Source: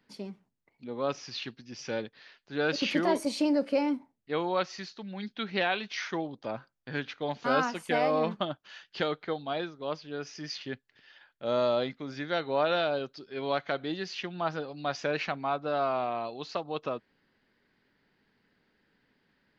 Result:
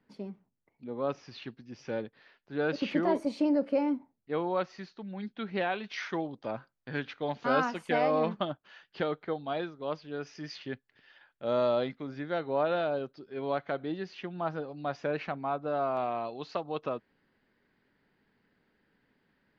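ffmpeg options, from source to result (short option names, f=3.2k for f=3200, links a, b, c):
-af "asetnsamples=n=441:p=0,asendcmd='5.84 lowpass f 3000;8.5 lowpass f 1400;9.44 lowpass f 2400;12.07 lowpass f 1100;15.97 lowpass f 2500',lowpass=f=1.2k:p=1"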